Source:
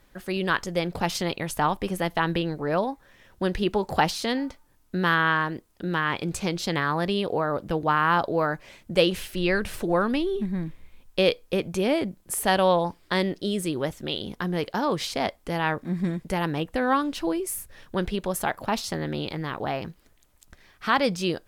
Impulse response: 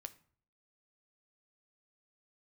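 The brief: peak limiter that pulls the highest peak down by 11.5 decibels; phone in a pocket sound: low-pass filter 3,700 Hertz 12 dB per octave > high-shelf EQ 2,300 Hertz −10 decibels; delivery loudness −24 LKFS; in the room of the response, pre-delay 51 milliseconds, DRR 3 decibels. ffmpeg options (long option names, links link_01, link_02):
-filter_complex "[0:a]alimiter=limit=-18dB:level=0:latency=1,asplit=2[link_01][link_02];[1:a]atrim=start_sample=2205,adelay=51[link_03];[link_02][link_03]afir=irnorm=-1:irlink=0,volume=2dB[link_04];[link_01][link_04]amix=inputs=2:normalize=0,lowpass=3700,highshelf=frequency=2300:gain=-10,volume=5.5dB"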